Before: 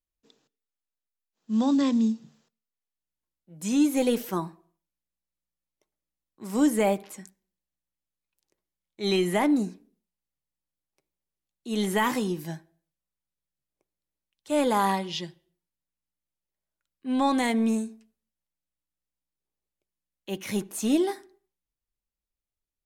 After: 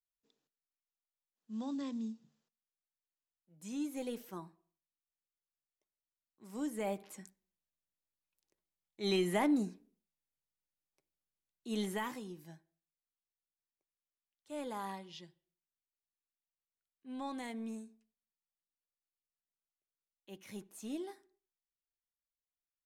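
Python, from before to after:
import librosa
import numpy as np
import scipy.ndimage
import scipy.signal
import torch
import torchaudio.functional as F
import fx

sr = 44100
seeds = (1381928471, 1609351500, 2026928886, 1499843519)

y = fx.gain(x, sr, db=fx.line((6.72, -16.5), (7.18, -7.5), (11.72, -7.5), (12.19, -18.0)))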